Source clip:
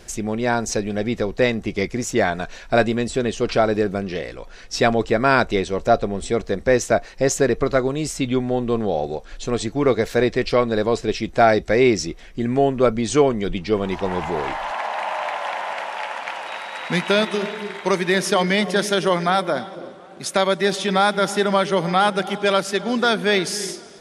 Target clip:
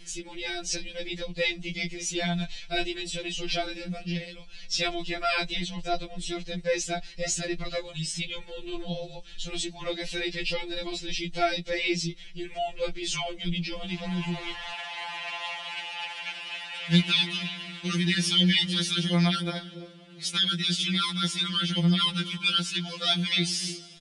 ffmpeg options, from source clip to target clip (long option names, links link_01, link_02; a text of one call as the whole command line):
ffmpeg -i in.wav -af "aresample=22050,aresample=44100,firequalizer=gain_entry='entry(110,0);entry(280,-12);entry(510,-16);entry(1200,-16);entry(2900,3);entry(6600,-5)':delay=0.05:min_phase=1,afftfilt=real='re*2.83*eq(mod(b,8),0)':imag='im*2.83*eq(mod(b,8),0)':win_size=2048:overlap=0.75,volume=2.5dB" out.wav